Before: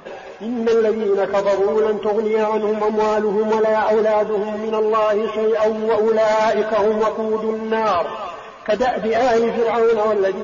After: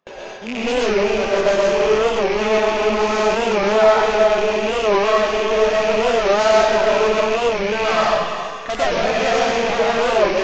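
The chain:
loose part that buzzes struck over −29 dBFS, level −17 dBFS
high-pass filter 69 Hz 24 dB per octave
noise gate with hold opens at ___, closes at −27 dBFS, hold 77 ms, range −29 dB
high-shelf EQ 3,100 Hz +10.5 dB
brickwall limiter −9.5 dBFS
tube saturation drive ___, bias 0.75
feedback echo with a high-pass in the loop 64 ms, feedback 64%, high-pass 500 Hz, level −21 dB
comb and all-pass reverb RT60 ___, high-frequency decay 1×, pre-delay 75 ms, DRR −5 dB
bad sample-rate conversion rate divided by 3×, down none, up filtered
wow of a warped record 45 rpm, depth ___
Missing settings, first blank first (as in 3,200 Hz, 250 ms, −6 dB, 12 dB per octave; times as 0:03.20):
−25 dBFS, 19 dB, 0.95 s, 160 cents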